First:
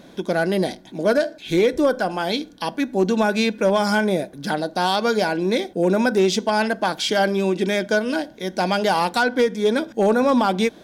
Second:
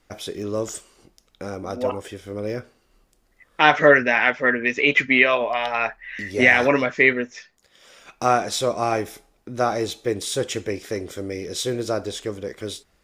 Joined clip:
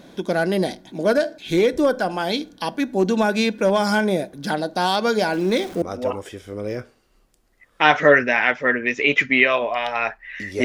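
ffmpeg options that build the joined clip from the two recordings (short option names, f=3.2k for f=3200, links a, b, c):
-filter_complex "[0:a]asettb=1/sr,asplit=3[a][b][c];[a]atrim=end=5.334[d];[b]atrim=start=5.33:end=5.82,asetpts=PTS-STARTPTS,afade=t=in:d=0.004:c=qsin,afade=t=out:st=0.486:d=0.004:c=qsin,aeval=exprs='val(0)+0.5*0.0211*sgn(val(0))':c=same[e];[c]atrim=start=5.816[f];[d][e]acrossfade=d=0.004:c1=hsin:c2=qsin[g];[g][f]acrossfade=d=0.004:c1=qsin:c2=hsin,apad=whole_dur=10.64,atrim=end=10.64,atrim=end=5.822[h];[1:a]atrim=start=1.608:end=6.43[i];[h][i]acrossfade=d=0.004:c1=hsin:c2=hsin"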